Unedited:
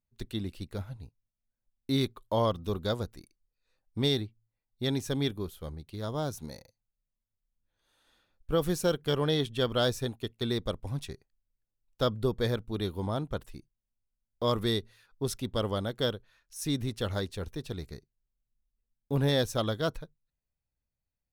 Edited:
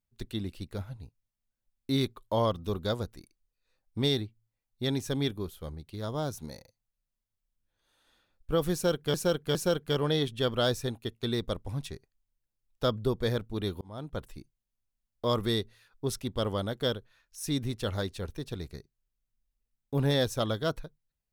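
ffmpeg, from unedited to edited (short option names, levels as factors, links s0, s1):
-filter_complex "[0:a]asplit=4[s0][s1][s2][s3];[s0]atrim=end=9.142[s4];[s1]atrim=start=8.728:end=9.142[s5];[s2]atrim=start=8.728:end=12.99,asetpts=PTS-STARTPTS,afade=t=out:st=4.258:d=0.004:c=hsin[s6];[s3]atrim=start=12.99,asetpts=PTS-STARTPTS,afade=t=in:d=0.44[s7];[s4][s5]acrossfade=d=0.004:c1=hsin:c2=hsin[s8];[s6][s7]concat=n=2:v=0:a=1[s9];[s8][s9]acrossfade=d=0.004:c1=hsin:c2=hsin"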